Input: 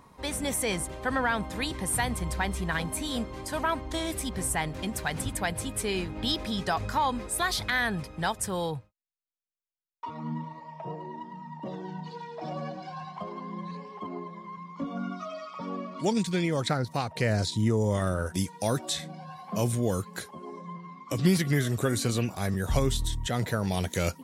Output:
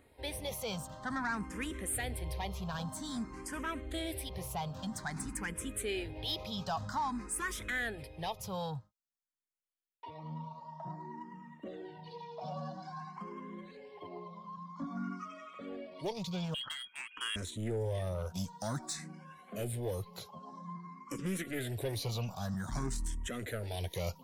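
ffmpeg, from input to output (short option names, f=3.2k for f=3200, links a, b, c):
-filter_complex "[0:a]asettb=1/sr,asplit=3[a][b][c];[a]atrim=end=16.544[d];[b]atrim=start=16.54:end=17.36,asetpts=PTS-STARTPTS,afade=t=in:d=0.004:c=qsin,afade=t=out:st=0.816:d=0.004:c=qsin,lowpass=f=2.9k:t=q:w=0.5098,lowpass=f=2.9k:t=q:w=0.6013,lowpass=f=2.9k:t=q:w=0.9,lowpass=f=2.9k:t=q:w=2.563,afreqshift=-3400[e];[c]atrim=start=17.356[f];[d][e]acrossfade=d=0.004:c1=hsin:c2=qsin[g];[g][f]acrossfade=d=0.004:c1=qsin:c2=hsin,asoftclip=type=tanh:threshold=-24dB,asplit=2[h][i];[i]afreqshift=0.51[j];[h][j]amix=inputs=2:normalize=1,volume=-3.5dB"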